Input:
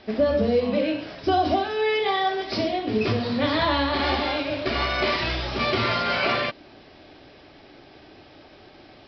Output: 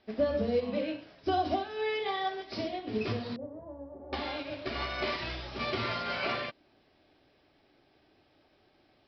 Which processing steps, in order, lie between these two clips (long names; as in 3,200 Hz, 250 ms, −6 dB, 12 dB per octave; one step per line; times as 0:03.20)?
0:03.36–0:04.13: transistor ladder low-pass 650 Hz, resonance 45%
expander for the loud parts 1.5 to 1, over −39 dBFS
level −6.5 dB